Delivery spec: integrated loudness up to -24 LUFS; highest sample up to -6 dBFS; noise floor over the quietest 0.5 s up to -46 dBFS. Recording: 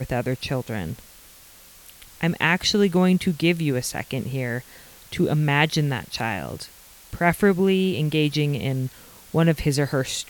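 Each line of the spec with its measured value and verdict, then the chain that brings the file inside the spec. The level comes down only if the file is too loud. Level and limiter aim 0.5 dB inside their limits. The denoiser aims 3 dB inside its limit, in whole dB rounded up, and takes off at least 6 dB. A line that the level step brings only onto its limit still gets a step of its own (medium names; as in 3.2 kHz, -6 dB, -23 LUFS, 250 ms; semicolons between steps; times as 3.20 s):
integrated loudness -22.5 LUFS: fail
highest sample -5.0 dBFS: fail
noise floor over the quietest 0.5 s -48 dBFS: pass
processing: trim -2 dB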